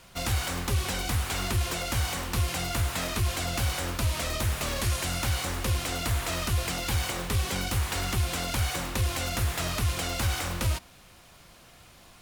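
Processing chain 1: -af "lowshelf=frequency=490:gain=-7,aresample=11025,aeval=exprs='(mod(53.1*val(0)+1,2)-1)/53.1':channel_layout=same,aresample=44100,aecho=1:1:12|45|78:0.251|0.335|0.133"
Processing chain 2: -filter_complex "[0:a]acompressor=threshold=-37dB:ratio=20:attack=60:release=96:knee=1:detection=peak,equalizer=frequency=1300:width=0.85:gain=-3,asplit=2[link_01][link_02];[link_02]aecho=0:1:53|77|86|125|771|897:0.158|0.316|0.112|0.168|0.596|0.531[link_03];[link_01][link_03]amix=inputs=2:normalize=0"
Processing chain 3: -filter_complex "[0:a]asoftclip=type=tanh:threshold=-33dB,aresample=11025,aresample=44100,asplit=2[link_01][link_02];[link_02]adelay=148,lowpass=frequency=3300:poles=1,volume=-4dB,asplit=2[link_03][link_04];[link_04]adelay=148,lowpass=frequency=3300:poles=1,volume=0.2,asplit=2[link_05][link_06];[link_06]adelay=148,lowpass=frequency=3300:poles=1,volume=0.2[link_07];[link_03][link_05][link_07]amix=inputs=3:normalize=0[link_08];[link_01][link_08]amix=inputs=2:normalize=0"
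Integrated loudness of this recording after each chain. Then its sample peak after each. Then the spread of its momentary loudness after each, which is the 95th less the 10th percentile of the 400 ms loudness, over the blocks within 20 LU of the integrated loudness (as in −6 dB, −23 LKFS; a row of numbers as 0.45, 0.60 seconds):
−36.5, −34.0, −35.5 LKFS; −27.5, −19.0, −26.5 dBFS; 4, 4, 4 LU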